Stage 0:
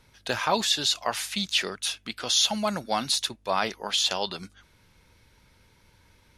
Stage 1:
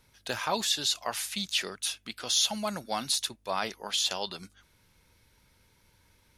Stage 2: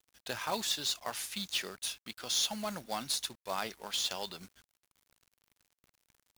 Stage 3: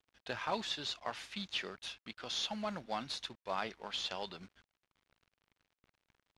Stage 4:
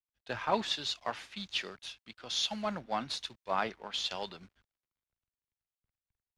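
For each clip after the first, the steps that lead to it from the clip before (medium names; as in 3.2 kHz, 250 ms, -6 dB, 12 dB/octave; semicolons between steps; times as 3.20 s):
treble shelf 8.1 kHz +9.5 dB; trim -5.5 dB
companded quantiser 4-bit; trim -5.5 dB
low-pass 3.4 kHz 12 dB/octave; trim -1 dB
three bands expanded up and down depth 70%; trim +2.5 dB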